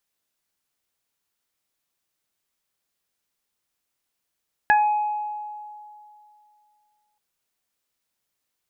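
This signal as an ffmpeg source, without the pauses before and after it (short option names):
-f lavfi -i "aevalsrc='0.2*pow(10,-3*t/2.56)*sin(2*PI*841*t)+0.251*pow(10,-3*t/0.2)*sin(2*PI*1682*t)+0.0282*pow(10,-3*t/1.12)*sin(2*PI*2523*t)':d=2.48:s=44100"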